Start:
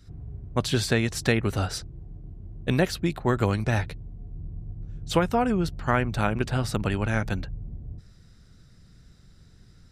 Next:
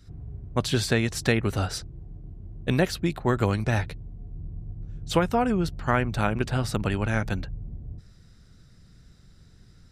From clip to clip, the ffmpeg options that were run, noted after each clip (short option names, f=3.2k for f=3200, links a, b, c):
-af anull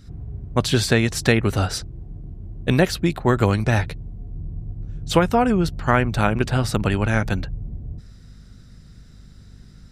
-af "aeval=exprs='val(0)+0.00282*(sin(2*PI*50*n/s)+sin(2*PI*2*50*n/s)/2+sin(2*PI*3*50*n/s)/3+sin(2*PI*4*50*n/s)/4+sin(2*PI*5*50*n/s)/5)':c=same,volume=5.5dB"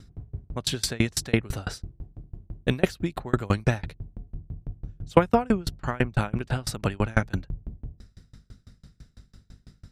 -af "aeval=exprs='val(0)*pow(10,-32*if(lt(mod(6*n/s,1),2*abs(6)/1000),1-mod(6*n/s,1)/(2*abs(6)/1000),(mod(6*n/s,1)-2*abs(6)/1000)/(1-2*abs(6)/1000))/20)':c=same,volume=2.5dB"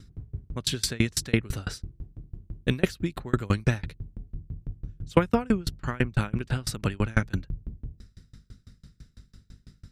-af "equalizer=f=730:t=o:w=1:g=-8"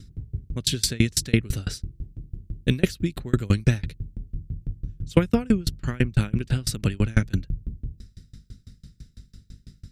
-af "equalizer=f=980:w=0.78:g=-11.5,volume=5dB"